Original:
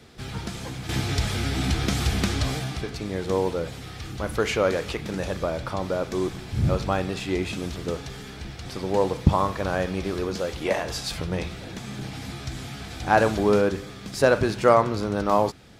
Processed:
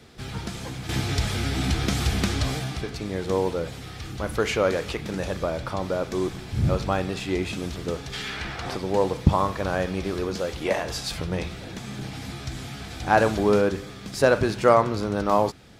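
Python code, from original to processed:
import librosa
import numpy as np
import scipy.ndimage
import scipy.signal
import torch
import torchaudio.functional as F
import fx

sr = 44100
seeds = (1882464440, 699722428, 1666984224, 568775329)

y = fx.peak_eq(x, sr, hz=fx.line((8.12, 3600.0), (8.75, 740.0)), db=13.5, octaves=2.7, at=(8.12, 8.75), fade=0.02)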